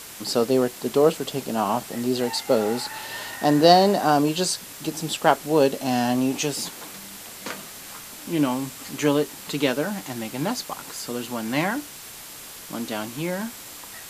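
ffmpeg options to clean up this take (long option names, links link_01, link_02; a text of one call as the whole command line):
ffmpeg -i in.wav -af "bandreject=frequency=7500:width=30,afwtdn=0.011" out.wav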